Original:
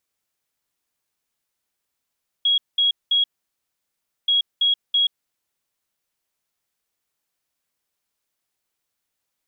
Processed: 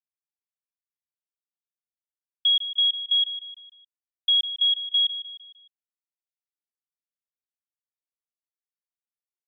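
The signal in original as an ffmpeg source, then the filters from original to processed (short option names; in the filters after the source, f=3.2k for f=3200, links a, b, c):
-f lavfi -i "aevalsrc='0.178*sin(2*PI*3310*t)*clip(min(mod(mod(t,1.83),0.33),0.13-mod(mod(t,1.83),0.33))/0.005,0,1)*lt(mod(t,1.83),0.99)':d=3.66:s=44100"
-af "adynamicequalizer=threshold=0.02:dfrequency=3100:dqfactor=1.3:tfrequency=3100:tqfactor=1.3:attack=5:release=100:ratio=0.375:range=3:mode=cutabove:tftype=bell,aresample=8000,aeval=exprs='sgn(val(0))*max(abs(val(0))-0.00224,0)':c=same,aresample=44100,aecho=1:1:152|304|456|608:0.251|0.111|0.0486|0.0214"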